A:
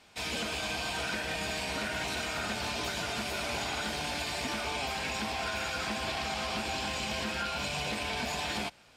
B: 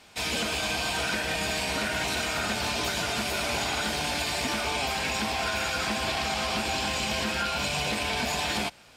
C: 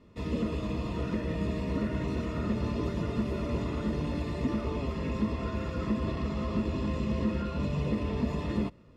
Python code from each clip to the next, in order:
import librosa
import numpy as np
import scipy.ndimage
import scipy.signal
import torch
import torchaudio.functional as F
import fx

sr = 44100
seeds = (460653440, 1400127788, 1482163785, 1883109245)

y1 = fx.high_shelf(x, sr, hz=8300.0, db=4.5)
y1 = F.gain(torch.from_numpy(y1), 5.0).numpy()
y2 = np.convolve(y1, np.full(57, 1.0 / 57))[:len(y1)]
y2 = F.gain(torch.from_numpy(y2), 7.0).numpy()